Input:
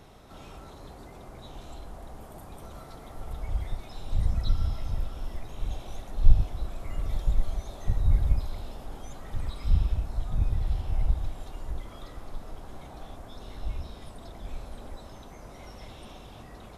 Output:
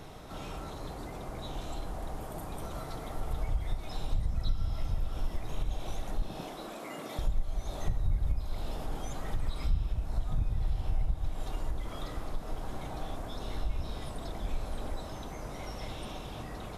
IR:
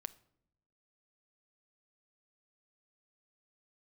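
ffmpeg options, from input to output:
-filter_complex "[0:a]asettb=1/sr,asplit=3[a][b][c];[a]atrim=end=6.224[d];[b]atrim=start=6.22:end=7.19,asetpts=PTS-STARTPTS,afade=t=in:d=0.004:c=qsin,afade=t=out:st=0.966:d=0.004:c=qsin,highpass=f=220:w=0.5412,highpass=f=220:w=1.3066[e];[c]atrim=start=7.186[f];[d][e]acrossfade=d=0.004:c1=hsin:c2=qsin[g];[g][f]acrossfade=d=0.004:c1=qsin:c2=hsin,acompressor=threshold=-33dB:ratio=3[h];[1:a]atrim=start_sample=2205[i];[h][i]afir=irnorm=-1:irlink=0,volume=8.5dB"

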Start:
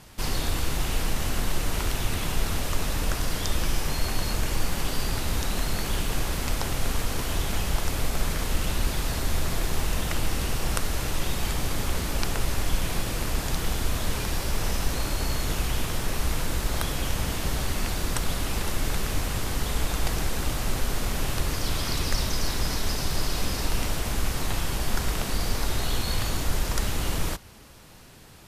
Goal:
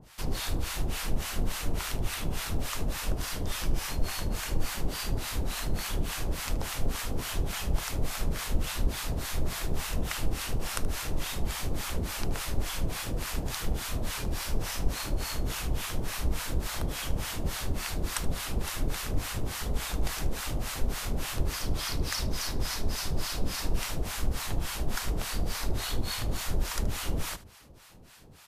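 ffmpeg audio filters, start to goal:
-filter_complex "[0:a]acrossover=split=760[a][b];[a]aeval=exprs='val(0)*(1-1/2+1/2*cos(2*PI*3.5*n/s))':c=same[c];[b]aeval=exprs='val(0)*(1-1/2-1/2*cos(2*PI*3.5*n/s))':c=same[d];[c][d]amix=inputs=2:normalize=0,asplit=2[e][f];[f]aecho=0:1:76:0.126[g];[e][g]amix=inputs=2:normalize=0"

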